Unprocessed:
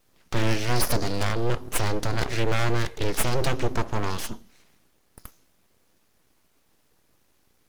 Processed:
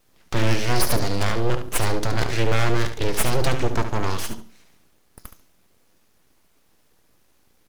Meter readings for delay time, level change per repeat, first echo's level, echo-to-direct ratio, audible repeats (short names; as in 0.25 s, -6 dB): 71 ms, -15.0 dB, -9.5 dB, -9.5 dB, 2